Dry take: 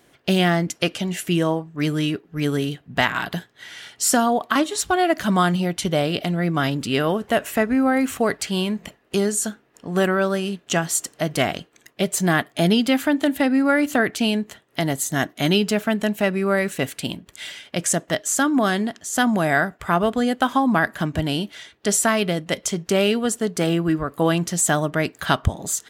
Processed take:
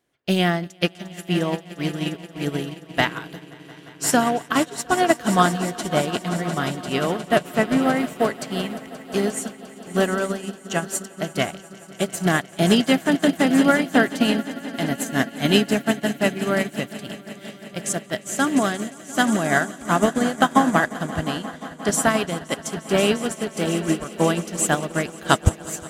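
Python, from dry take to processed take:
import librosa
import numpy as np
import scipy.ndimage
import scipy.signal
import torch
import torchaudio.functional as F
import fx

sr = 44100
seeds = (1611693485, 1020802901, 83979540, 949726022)

y = fx.echo_swell(x, sr, ms=176, loudest=5, wet_db=-13.0)
y = fx.upward_expand(y, sr, threshold_db=-28.0, expansion=2.5)
y = y * librosa.db_to_amplitude(3.5)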